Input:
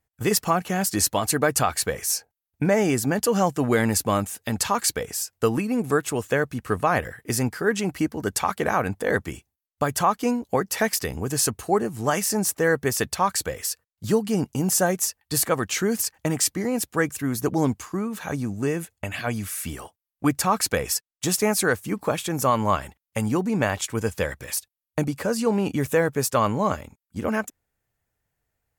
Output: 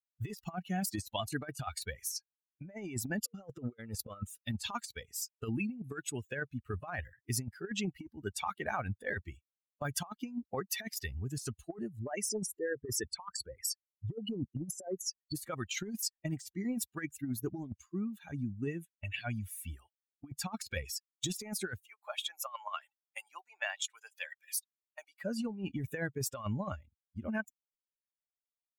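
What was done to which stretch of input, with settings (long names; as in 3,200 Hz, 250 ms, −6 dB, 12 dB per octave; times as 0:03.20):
0:03.27–0:04.43: hollow resonant body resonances 480/1,300 Hz, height 14 dB
0:11.99–0:15.36: spectral envelope exaggerated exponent 2
0:21.81–0:25.24: high-pass filter 640 Hz 24 dB per octave
whole clip: spectral dynamics exaggerated over time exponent 2; dynamic equaliser 4,300 Hz, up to +5 dB, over −45 dBFS, Q 0.86; compressor whose output falls as the input rises −31 dBFS, ratio −0.5; level −6 dB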